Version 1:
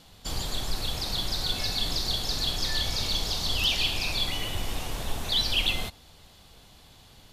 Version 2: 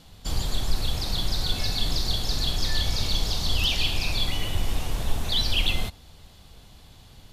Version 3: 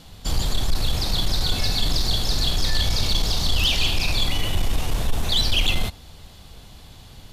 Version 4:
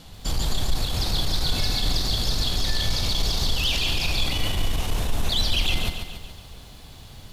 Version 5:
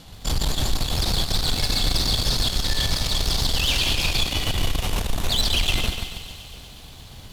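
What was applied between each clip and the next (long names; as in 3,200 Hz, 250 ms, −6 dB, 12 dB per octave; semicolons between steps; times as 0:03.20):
low-shelf EQ 190 Hz +7.5 dB
soft clipping −17 dBFS, distortion −17 dB; level +5.5 dB
brickwall limiter −16.5 dBFS, peak gain reduction 4.5 dB; feedback echo at a low word length 141 ms, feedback 55%, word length 9 bits, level −7 dB
harmonic generator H 6 −17 dB, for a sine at −11.5 dBFS; feedback echo with a high-pass in the loop 120 ms, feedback 81%, high-pass 840 Hz, level −13.5 dB; level +1 dB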